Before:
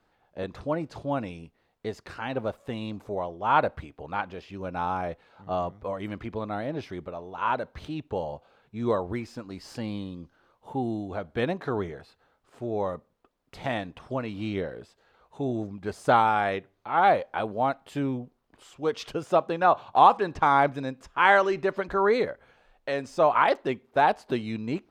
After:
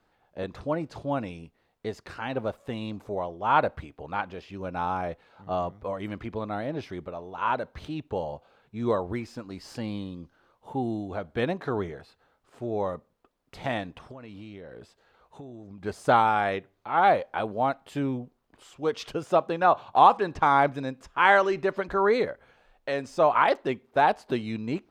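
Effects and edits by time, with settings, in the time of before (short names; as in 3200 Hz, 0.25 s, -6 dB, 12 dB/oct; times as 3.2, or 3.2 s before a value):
13.98–15.84 compressor 12:1, threshold -39 dBFS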